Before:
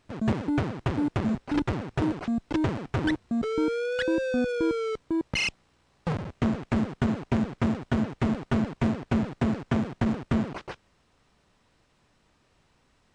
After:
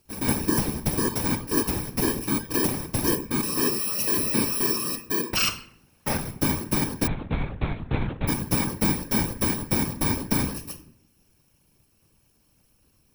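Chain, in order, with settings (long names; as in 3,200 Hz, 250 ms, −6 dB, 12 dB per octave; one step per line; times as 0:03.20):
samples in bit-reversed order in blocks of 64 samples
0:05.22–0:06.19: parametric band 1,300 Hz +8 dB 2.9 octaves
on a send at −3 dB: convolution reverb RT60 0.60 s, pre-delay 4 ms
0:07.07–0:08.28: on the sum: linear-prediction vocoder at 8 kHz pitch kept
random phases in short frames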